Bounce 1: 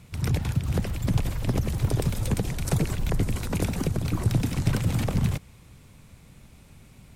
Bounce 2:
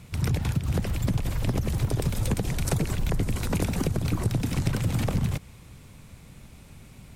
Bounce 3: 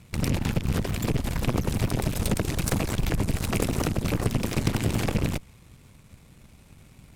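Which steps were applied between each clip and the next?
downward compressor, threshold −24 dBFS, peak gain reduction 8 dB; level +3 dB
loose part that buzzes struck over −23 dBFS, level −27 dBFS; harmonic generator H 3 −15 dB, 8 −16 dB, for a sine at −10 dBFS; level +2.5 dB

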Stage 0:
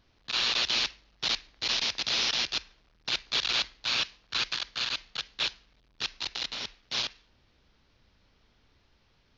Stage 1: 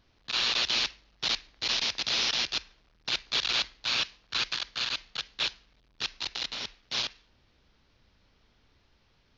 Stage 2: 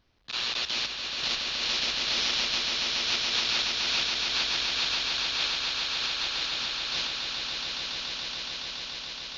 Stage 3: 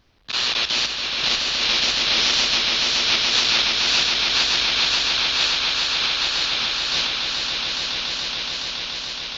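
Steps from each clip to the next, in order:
no processing that can be heard
echo that builds up and dies away 141 ms, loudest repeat 8, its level −6.5 dB; level −3 dB
tape wow and flutter 64 cents; level +8.5 dB

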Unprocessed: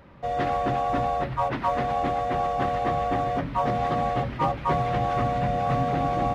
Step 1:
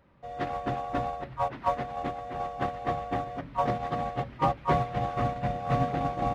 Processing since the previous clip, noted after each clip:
noise gate −23 dBFS, range −12 dB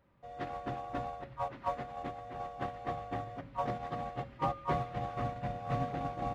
tuned comb filter 110 Hz, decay 1 s, harmonics odd, mix 60%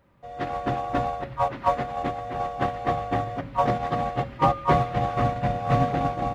automatic gain control gain up to 5 dB
level +7.5 dB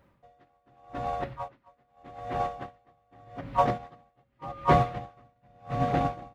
tremolo with a sine in dB 0.84 Hz, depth 39 dB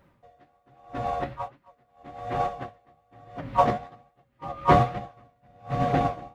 flanger 1.2 Hz, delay 4.7 ms, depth 9.5 ms, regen +59%
level +7 dB

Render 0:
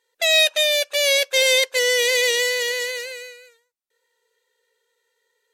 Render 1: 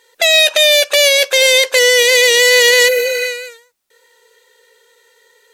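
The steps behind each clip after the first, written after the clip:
healed spectral selection 0:02.91–0:03.23, 800–11,000 Hz after
in parallel at +3 dB: compressor whose output falls as the input rises −25 dBFS, ratio −0.5
on the sum: brickwall limiter −8 dBFS, peak gain reduction 3.5 dB
level +6.5 dB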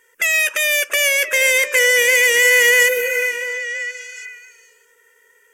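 phaser with its sweep stopped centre 1,700 Hz, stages 4
echo through a band-pass that steps 342 ms, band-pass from 280 Hz, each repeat 1.4 octaves, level −5.5 dB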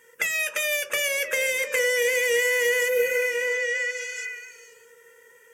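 downward compressor 4 to 1, threshold −25 dBFS, peak gain reduction 13 dB
on a send at −3 dB: convolution reverb RT60 0.30 s, pre-delay 3 ms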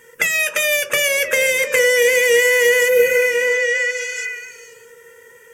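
low-shelf EQ 200 Hz +11 dB
level +7.5 dB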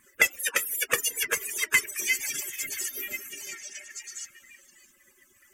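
harmonic-percussive split with one part muted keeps percussive
level −1.5 dB

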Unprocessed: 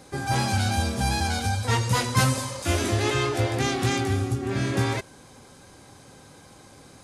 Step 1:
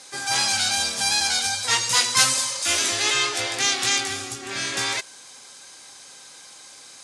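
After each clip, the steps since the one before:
meter weighting curve ITU-R 468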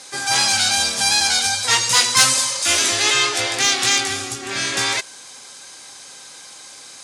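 soft clipping −6.5 dBFS, distortion −26 dB
level +5 dB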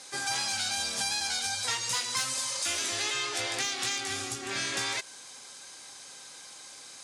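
downward compressor 10 to 1, threshold −20 dBFS, peak gain reduction 11.5 dB
level −7.5 dB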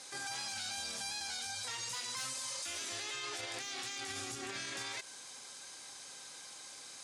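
brickwall limiter −29 dBFS, peak gain reduction 10.5 dB
level −3 dB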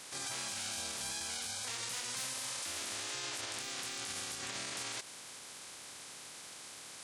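ceiling on every frequency bin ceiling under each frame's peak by 17 dB
level +1 dB

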